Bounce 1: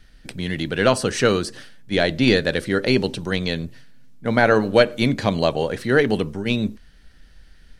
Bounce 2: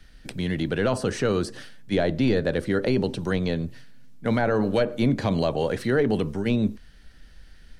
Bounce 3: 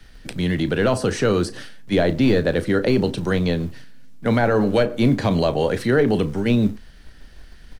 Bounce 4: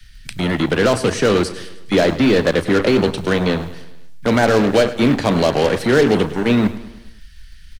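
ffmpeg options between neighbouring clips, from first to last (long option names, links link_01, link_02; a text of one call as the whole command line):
ffmpeg -i in.wav -filter_complex "[0:a]acrossover=split=100|1300[link_01][link_02][link_03];[link_02]alimiter=limit=-14.5dB:level=0:latency=1:release=24[link_04];[link_03]acompressor=threshold=-35dB:ratio=6[link_05];[link_01][link_04][link_05]amix=inputs=3:normalize=0" out.wav
ffmpeg -i in.wav -filter_complex "[0:a]acrossover=split=110[link_01][link_02];[link_01]acrusher=bits=4:mode=log:mix=0:aa=0.000001[link_03];[link_03][link_02]amix=inputs=2:normalize=0,asplit=2[link_04][link_05];[link_05]adelay=34,volume=-14dB[link_06];[link_04][link_06]amix=inputs=2:normalize=0,volume=4.5dB" out.wav
ffmpeg -i in.wav -filter_complex "[0:a]acrossover=split=170|1500[link_01][link_02][link_03];[link_01]asoftclip=type=tanh:threshold=-30dB[link_04];[link_02]acrusher=bits=3:mix=0:aa=0.5[link_05];[link_04][link_05][link_03]amix=inputs=3:normalize=0,aecho=1:1:104|208|312|416|520:0.168|0.089|0.0472|0.025|0.0132,volume=4dB" out.wav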